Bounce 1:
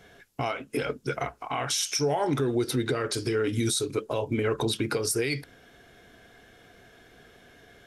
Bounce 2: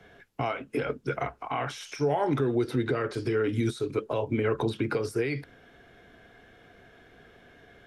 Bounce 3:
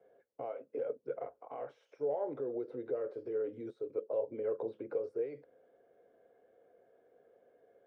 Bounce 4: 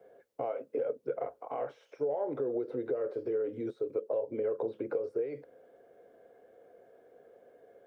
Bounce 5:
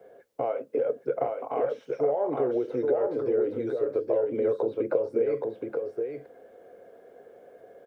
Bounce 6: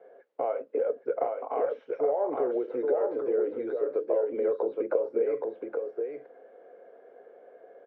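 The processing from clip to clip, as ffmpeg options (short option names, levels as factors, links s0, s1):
-filter_complex "[0:a]bass=f=250:g=0,treble=f=4000:g=-11,acrossover=split=100|520|2300[s0][s1][s2][s3];[s3]alimiter=level_in=3.76:limit=0.0631:level=0:latency=1:release=62,volume=0.266[s4];[s0][s1][s2][s4]amix=inputs=4:normalize=0"
-af "bandpass=f=520:t=q:w=5.9:csg=0"
-af "acompressor=threshold=0.0158:ratio=6,volume=2.37"
-af "aecho=1:1:820:0.631,volume=2"
-af "highpass=350,lowpass=2200"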